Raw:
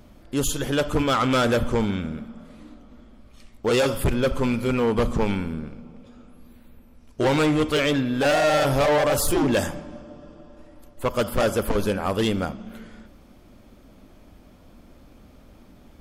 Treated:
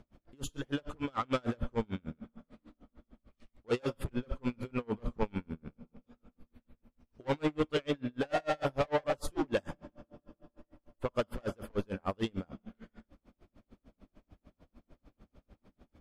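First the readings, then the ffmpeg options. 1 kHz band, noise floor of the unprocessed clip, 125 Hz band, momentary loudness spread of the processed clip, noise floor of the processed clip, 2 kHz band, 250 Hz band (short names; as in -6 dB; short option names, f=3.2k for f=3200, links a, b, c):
-12.5 dB, -51 dBFS, -13.0 dB, 14 LU, under -85 dBFS, -14.5 dB, -12.5 dB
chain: -af "aemphasis=mode=reproduction:type=50fm,aeval=exprs='val(0)*pow(10,-36*(0.5-0.5*cos(2*PI*6.7*n/s))/20)':c=same,volume=-6dB"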